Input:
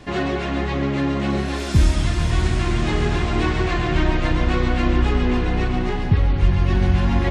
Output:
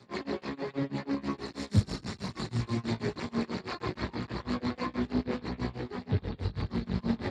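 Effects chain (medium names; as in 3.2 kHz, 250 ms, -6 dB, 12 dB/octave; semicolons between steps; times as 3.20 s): rippled EQ curve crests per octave 0.94, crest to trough 9 dB; chorus 0.72 Hz, delay 17 ms, depth 5 ms; tremolo 6.2 Hz, depth 97%; trim -3.5 dB; Speex 8 kbps 32 kHz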